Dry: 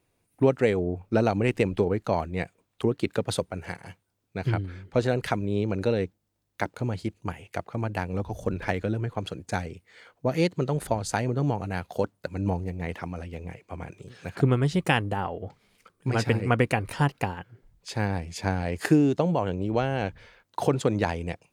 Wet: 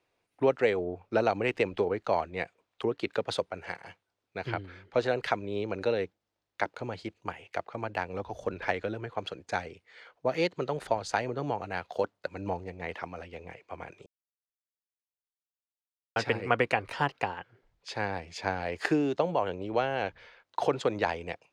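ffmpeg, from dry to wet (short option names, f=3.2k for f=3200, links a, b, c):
-filter_complex "[0:a]asplit=3[a][b][c];[a]atrim=end=14.06,asetpts=PTS-STARTPTS,afade=t=out:st=14.056:d=0.004:c=hsin[d];[b]atrim=start=14.06:end=16.16,asetpts=PTS-STARTPTS,volume=0[e];[c]atrim=start=16.16,asetpts=PTS-STARTPTS,afade=t=in:d=0.004:c=hsin[f];[d][e][f]concat=n=3:v=0:a=1,acrossover=split=380 5900:gain=0.224 1 0.112[g][h][i];[g][h][i]amix=inputs=3:normalize=0"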